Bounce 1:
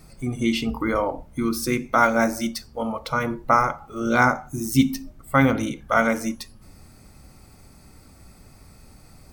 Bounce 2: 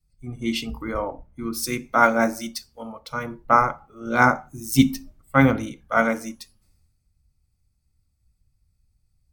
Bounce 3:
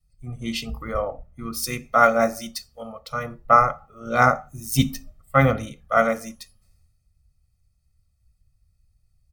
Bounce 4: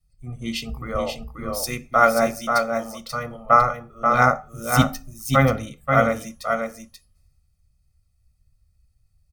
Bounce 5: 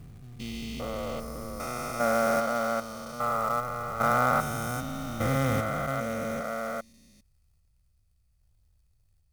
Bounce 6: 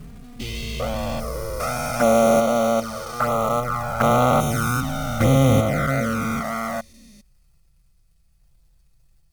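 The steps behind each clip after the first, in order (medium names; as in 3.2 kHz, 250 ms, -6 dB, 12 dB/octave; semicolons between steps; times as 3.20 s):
three bands expanded up and down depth 100%; trim -4 dB
comb 1.6 ms, depth 66%; trim -1 dB
delay 534 ms -5 dB
spectrogram pixelated in time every 400 ms; short-mantissa float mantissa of 2-bit; trim -3 dB
in parallel at -3.5 dB: sine folder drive 4 dB, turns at -9 dBFS; on the sum: touch-sensitive flanger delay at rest 6.1 ms, full sweep at -16 dBFS; trim +3.5 dB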